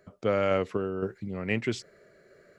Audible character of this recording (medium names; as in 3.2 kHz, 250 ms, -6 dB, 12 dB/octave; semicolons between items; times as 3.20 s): random-step tremolo 3.9 Hz